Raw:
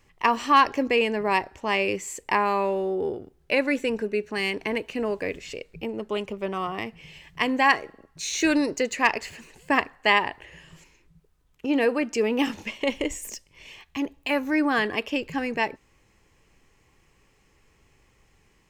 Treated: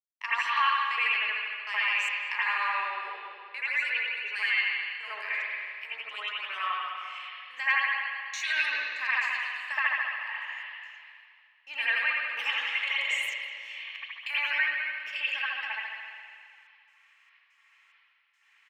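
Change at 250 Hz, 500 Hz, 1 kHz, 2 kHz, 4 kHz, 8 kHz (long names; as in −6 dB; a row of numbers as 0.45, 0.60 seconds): below −40 dB, −25.5 dB, −7.5 dB, +1.5 dB, −0.5 dB, −12.0 dB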